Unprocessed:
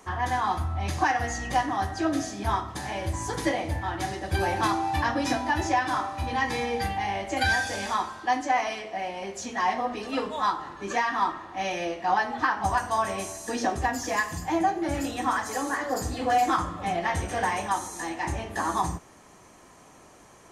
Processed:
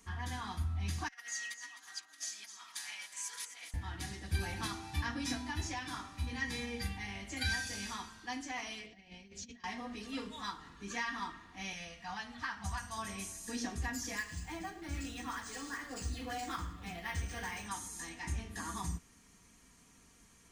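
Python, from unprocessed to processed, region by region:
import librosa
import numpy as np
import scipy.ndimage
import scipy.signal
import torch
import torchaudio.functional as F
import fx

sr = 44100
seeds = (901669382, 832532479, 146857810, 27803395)

y = fx.chain(x, sr, fx.over_compress(threshold_db=-32.0, ratio=-0.5),
    fx.highpass(hz=1400.0, slope=12),
    fx.echo_alternate(ms=129, hz=1300.0, feedback_pct=58, wet_db=-6.5), at=(1.08, 3.74))
y = fx.chain(y, sr, fx.lowpass(hz=4500.0, slope=12),
    fx.peak_eq(hz=1100.0, db=-14.0, octaves=1.4),
    fx.over_compress(threshold_db=-42.0, ratio=-0.5), at=(8.86, 9.64))
y = fx.chain(y, sr, fx.peak_eq(hz=350.0, db=-12.5, octaves=0.84),
    fx.doppler_dist(depth_ms=0.1), at=(11.73, 12.97))
y = fx.chain(y, sr, fx.peak_eq(hz=190.0, db=-4.5, octaves=1.4),
    fx.echo_single(ms=107, db=-16.0),
    fx.resample_linear(factor=3), at=(14.17, 17.66))
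y = fx.tone_stack(y, sr, knobs='6-0-2')
y = y + 0.47 * np.pad(y, (int(4.3 * sr / 1000.0), 0))[:len(y)]
y = y * 10.0 ** (8.5 / 20.0)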